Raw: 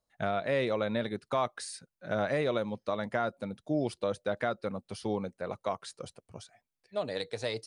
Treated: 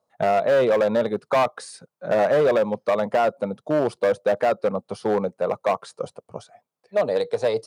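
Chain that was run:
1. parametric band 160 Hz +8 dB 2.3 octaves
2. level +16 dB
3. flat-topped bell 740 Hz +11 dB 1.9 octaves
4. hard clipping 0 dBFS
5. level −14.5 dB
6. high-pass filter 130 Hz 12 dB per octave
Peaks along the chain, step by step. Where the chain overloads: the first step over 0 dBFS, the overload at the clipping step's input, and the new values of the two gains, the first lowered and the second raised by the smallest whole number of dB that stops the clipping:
−14.5, +1.5, +9.5, 0.0, −14.5, −11.0 dBFS
step 2, 9.5 dB
step 2 +6 dB, step 5 −4.5 dB

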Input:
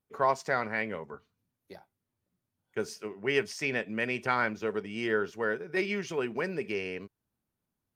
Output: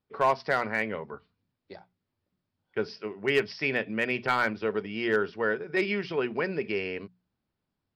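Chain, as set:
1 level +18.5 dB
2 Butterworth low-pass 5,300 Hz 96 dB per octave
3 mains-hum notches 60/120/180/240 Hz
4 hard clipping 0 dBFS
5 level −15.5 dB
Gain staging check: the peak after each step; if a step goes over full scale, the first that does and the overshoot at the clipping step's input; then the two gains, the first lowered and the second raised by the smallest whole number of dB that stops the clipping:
+5.5, +6.0, +6.0, 0.0, −15.5 dBFS
step 1, 6.0 dB
step 1 +12.5 dB, step 5 −9.5 dB

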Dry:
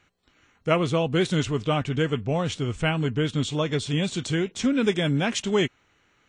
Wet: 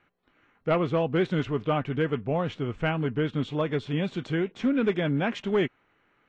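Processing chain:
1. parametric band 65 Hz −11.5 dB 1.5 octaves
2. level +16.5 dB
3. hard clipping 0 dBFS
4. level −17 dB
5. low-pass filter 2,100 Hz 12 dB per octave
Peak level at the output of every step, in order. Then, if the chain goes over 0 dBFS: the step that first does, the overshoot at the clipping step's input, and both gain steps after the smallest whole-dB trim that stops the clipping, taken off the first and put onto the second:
−7.0, +9.5, 0.0, −17.0, −16.5 dBFS
step 2, 9.5 dB
step 2 +6.5 dB, step 4 −7 dB

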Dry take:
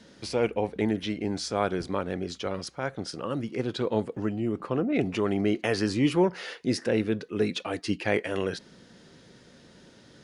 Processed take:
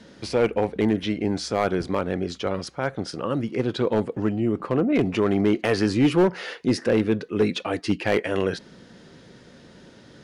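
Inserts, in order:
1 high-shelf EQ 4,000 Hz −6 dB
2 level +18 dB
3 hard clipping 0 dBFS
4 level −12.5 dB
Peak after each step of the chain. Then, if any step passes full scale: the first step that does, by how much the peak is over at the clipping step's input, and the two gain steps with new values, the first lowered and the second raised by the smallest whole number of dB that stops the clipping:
−11.0, +7.0, 0.0, −12.5 dBFS
step 2, 7.0 dB
step 2 +11 dB, step 4 −5.5 dB

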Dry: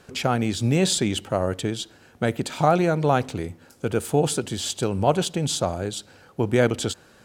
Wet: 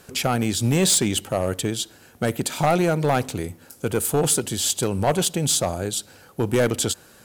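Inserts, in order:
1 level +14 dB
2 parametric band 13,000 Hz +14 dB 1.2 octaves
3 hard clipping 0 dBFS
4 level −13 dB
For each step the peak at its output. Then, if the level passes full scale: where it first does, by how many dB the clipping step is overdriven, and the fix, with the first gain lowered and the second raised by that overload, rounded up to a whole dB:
+9.5, +10.0, 0.0, −13.0 dBFS
step 1, 10.0 dB
step 1 +4 dB, step 4 −3 dB

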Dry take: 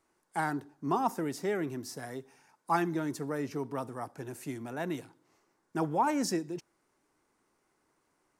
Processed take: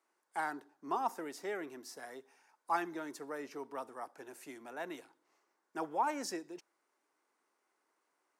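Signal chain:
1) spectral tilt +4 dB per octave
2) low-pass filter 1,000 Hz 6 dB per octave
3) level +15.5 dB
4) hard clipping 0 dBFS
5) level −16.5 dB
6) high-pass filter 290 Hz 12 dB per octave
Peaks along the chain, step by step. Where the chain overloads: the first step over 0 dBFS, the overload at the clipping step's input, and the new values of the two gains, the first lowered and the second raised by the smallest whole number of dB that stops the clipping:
−12.0, −19.0, −3.5, −3.5, −20.0, −20.5 dBFS
no step passes full scale

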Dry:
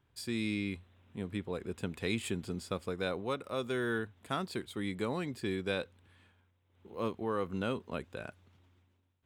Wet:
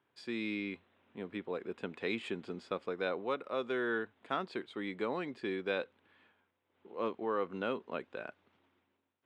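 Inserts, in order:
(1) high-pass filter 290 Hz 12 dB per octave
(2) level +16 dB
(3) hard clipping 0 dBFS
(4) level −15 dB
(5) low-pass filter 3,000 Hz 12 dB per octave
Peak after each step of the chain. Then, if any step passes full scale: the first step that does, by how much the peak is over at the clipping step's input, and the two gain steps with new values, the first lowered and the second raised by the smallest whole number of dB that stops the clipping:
−19.0, −3.0, −3.0, −18.0, −18.5 dBFS
no step passes full scale

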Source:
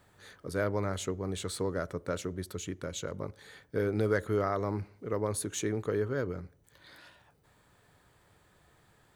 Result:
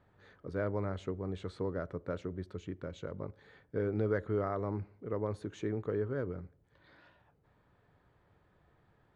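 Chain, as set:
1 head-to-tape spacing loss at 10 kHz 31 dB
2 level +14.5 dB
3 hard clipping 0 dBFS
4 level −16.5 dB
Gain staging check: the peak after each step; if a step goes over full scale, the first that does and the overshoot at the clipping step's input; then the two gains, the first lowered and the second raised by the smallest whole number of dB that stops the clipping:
−17.5, −3.0, −3.0, −19.5 dBFS
no step passes full scale

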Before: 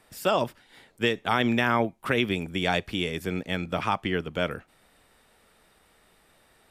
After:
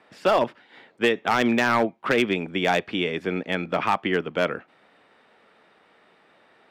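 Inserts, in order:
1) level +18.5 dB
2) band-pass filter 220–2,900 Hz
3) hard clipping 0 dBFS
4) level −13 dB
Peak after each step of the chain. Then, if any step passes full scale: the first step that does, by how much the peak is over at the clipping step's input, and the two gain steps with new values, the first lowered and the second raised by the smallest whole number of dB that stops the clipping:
+7.5, +8.0, 0.0, −13.0 dBFS
step 1, 8.0 dB
step 1 +10.5 dB, step 4 −5 dB

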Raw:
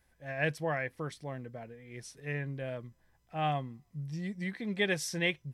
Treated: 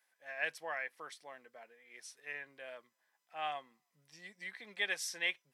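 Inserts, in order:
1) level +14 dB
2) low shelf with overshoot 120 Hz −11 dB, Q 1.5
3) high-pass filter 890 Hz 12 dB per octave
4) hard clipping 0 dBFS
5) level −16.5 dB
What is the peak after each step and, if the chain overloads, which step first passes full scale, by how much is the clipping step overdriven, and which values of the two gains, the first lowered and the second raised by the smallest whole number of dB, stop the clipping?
−2.5, −1.0, −3.5, −3.5, −20.0 dBFS
no step passes full scale

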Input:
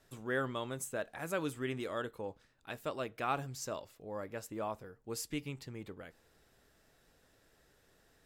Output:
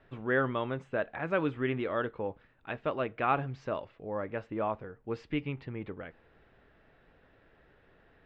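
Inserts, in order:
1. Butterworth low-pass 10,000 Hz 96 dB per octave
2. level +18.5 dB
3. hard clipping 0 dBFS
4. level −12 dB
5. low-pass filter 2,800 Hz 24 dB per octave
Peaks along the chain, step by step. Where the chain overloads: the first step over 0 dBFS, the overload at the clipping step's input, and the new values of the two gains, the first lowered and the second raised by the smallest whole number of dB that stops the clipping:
−20.5, −2.0, −2.0, −14.0, −14.0 dBFS
no step passes full scale

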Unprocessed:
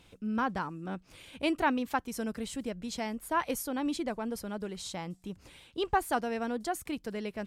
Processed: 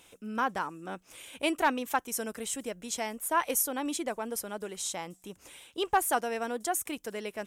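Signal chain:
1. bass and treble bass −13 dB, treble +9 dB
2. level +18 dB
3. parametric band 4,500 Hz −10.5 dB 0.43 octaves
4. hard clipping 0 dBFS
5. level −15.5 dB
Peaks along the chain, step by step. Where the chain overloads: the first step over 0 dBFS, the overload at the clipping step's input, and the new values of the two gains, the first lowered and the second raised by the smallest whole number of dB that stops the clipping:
−14.5, +3.5, +3.5, 0.0, −15.5 dBFS
step 2, 3.5 dB
step 2 +14 dB, step 5 −11.5 dB

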